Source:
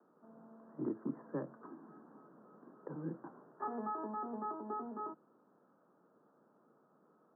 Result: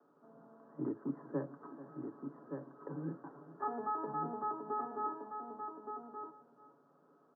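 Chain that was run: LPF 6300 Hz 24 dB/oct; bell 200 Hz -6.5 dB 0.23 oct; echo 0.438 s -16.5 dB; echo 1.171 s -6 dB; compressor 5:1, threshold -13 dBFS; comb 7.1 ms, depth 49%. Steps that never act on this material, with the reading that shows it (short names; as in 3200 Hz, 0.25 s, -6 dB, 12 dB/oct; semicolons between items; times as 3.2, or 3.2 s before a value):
LPF 6300 Hz: input band ends at 1800 Hz; compressor, threshold -13 dBFS: input peak -27.0 dBFS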